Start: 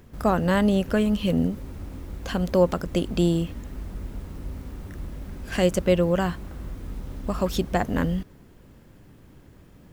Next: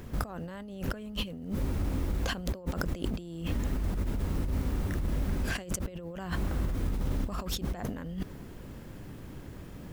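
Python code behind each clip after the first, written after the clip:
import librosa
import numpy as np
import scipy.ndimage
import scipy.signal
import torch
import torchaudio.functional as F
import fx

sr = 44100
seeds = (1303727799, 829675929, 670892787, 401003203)

y = fx.over_compress(x, sr, threshold_db=-34.0, ratio=-1.0)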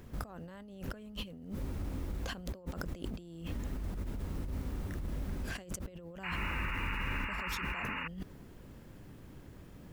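y = fx.spec_paint(x, sr, seeds[0], shape='noise', start_s=6.23, length_s=1.85, low_hz=840.0, high_hz=2900.0, level_db=-32.0)
y = F.gain(torch.from_numpy(y), -7.5).numpy()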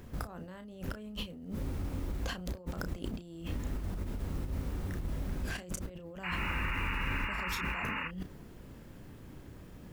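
y = fx.doubler(x, sr, ms=33.0, db=-9.0)
y = F.gain(torch.from_numpy(y), 1.5).numpy()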